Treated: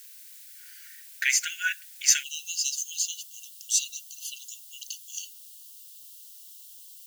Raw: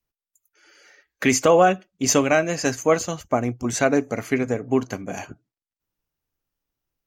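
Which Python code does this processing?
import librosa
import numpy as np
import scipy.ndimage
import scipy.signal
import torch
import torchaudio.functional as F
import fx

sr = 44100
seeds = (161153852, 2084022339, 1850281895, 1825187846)

y = fx.rider(x, sr, range_db=4, speed_s=2.0)
y = fx.dmg_noise_colour(y, sr, seeds[0], colour='blue', level_db=-51.0)
y = fx.brickwall_highpass(y, sr, low_hz=fx.steps((0.0, 1400.0), (2.22, 2700.0)))
y = F.gain(torch.from_numpy(y), 3.0).numpy()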